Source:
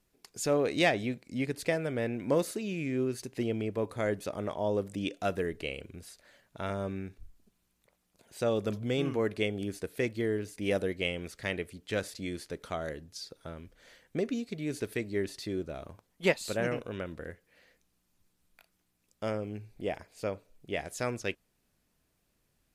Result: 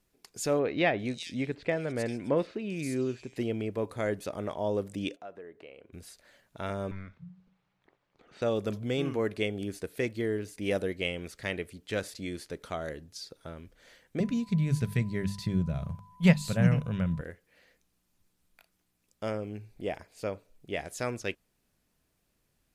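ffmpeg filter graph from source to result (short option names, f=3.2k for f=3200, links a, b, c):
-filter_complex "[0:a]asettb=1/sr,asplit=3[a][b][c];[a]atrim=end=0.594[d];[b]atrim=start=0.59:end=3.36,asetpts=PTS-STARTPTS,afade=t=in:d=0.004:c=qsin,afade=t=out:st=2.766:d=0.004:c=qsin,lowpass=8.8k,acrossover=split=3700[e][f];[f]adelay=400[g];[e][g]amix=inputs=2:normalize=0,atrim=end_sample=122157[h];[c]atrim=start=3.356[i];[d][h]acrossfade=d=0.004:c1=hsin:c2=qsin[j];[j][i]acrossfade=d=0.004:c1=qsin:c2=hsin,asettb=1/sr,asplit=3[k][l][m];[k]atrim=end=5.164[n];[l]atrim=start=5.16:end=5.93,asetpts=PTS-STARTPTS,afade=t=in:d=0.004:c=qsin,afade=t=out:st=0.766:d=0.004:c=qsin,bandpass=f=750:t=q:w=0.84,acompressor=threshold=-50dB:ratio=2:attack=3.2:release=140:knee=1:detection=peak[o];[m]atrim=start=5.926[p];[n][o]acrossfade=d=0.004:c1=hsin:c2=qsin[q];[q][p]acrossfade=d=0.004:c1=qsin:c2=hsin,asettb=1/sr,asplit=3[r][s][t];[r]atrim=end=6.914[u];[s]atrim=start=6.91:end=8.42,asetpts=PTS-STARTPTS,afade=t=in:d=0.004:c=qsin,afade=t=out:st=1.506:d=0.004:c=qsin,lowpass=4.5k,afreqshift=-190,asplit=2[v][w];[w]highpass=f=720:p=1,volume=16dB,asoftclip=type=tanh:threshold=-27.5dB[x];[v][x]amix=inputs=2:normalize=0,lowpass=f=1k:p=1,volume=-6dB[y];[t]atrim=start=8.416[z];[u][y]acrossfade=d=0.004:c1=hsin:c2=qsin[aa];[aa][z]acrossfade=d=0.004:c1=qsin:c2=hsin,asettb=1/sr,asplit=3[ab][ac][ad];[ab]atrim=end=14.204[ae];[ac]atrim=start=14.2:end=17.21,asetpts=PTS-STARTPTS,afade=t=in:d=0.004:c=qsin,afade=t=out:st=3.006:d=0.004:c=qsin,aeval=exprs='val(0)+0.002*sin(2*PI*1000*n/s)':c=same,lowshelf=f=230:t=q:w=3:g=11.5,bandreject=f=50:t=h:w=6,bandreject=f=100:t=h:w=6,bandreject=f=150:t=h:w=6,bandreject=f=200:t=h:w=6[af];[ad]atrim=start=17.206[ag];[ae][af]acrossfade=d=0.004:c1=hsin:c2=qsin[ah];[ah][ag]acrossfade=d=0.004:c1=qsin:c2=hsin"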